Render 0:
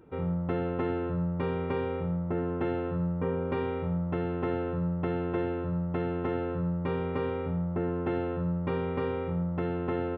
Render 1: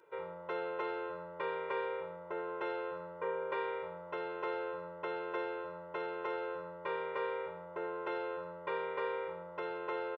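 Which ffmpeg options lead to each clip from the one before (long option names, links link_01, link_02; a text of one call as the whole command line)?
ffmpeg -i in.wav -af "highpass=690,aecho=1:1:2:0.96,volume=-2.5dB" out.wav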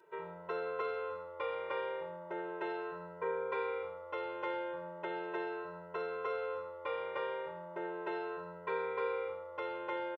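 ffmpeg -i in.wav -filter_complex "[0:a]asplit=2[link_01][link_02];[link_02]adelay=2.7,afreqshift=0.37[link_03];[link_01][link_03]amix=inputs=2:normalize=1,volume=3dB" out.wav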